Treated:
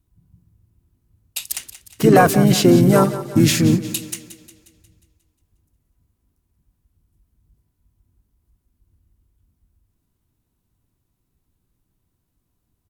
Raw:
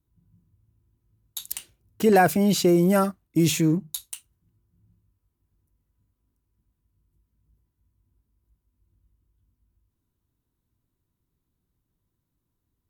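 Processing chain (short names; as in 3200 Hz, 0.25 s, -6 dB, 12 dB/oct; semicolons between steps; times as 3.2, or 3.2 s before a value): in parallel at -10 dB: soft clip -15 dBFS, distortion -16 dB; on the sum: harmoniser -7 st -7 dB, -5 st -5 dB; split-band echo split 310 Hz, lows 0.13 s, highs 0.179 s, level -14 dB; gain +2.5 dB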